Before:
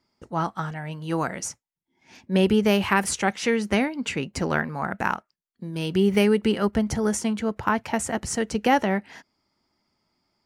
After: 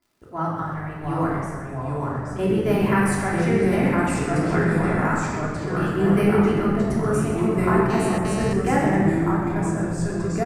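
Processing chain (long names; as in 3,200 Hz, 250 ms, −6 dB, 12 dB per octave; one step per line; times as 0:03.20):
flat-topped bell 4,400 Hz −9 dB
surface crackle 75 per second −46 dBFS
0:01.36–0:02.39: tuned comb filter 210 Hz, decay 0.15 s, harmonics all, mix 90%
delay with pitch and tempo change per echo 652 ms, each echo −2 semitones, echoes 2
echo with shifted repeats 127 ms, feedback 52%, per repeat −52 Hz, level −11 dB
convolution reverb RT60 1.4 s, pre-delay 3 ms, DRR −5 dB
0:07.90–0:08.53: phone interference −24 dBFS
level −6.5 dB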